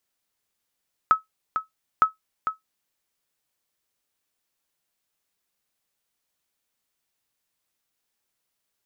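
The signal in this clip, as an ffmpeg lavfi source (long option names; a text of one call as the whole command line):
ffmpeg -f lavfi -i "aevalsrc='0.398*(sin(2*PI*1290*mod(t,0.91))*exp(-6.91*mod(t,0.91)/0.14)+0.376*sin(2*PI*1290*max(mod(t,0.91)-0.45,0))*exp(-6.91*max(mod(t,0.91)-0.45,0)/0.14))':duration=1.82:sample_rate=44100" out.wav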